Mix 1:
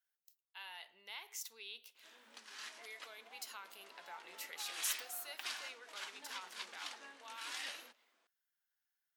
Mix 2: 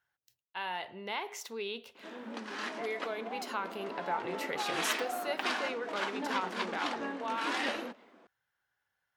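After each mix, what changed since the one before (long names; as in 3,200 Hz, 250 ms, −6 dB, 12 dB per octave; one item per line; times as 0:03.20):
master: remove first difference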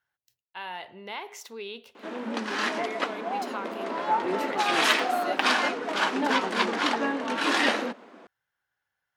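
background +10.5 dB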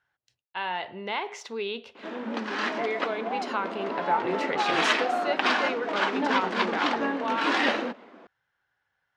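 speech +7.0 dB
master: add high-frequency loss of the air 110 metres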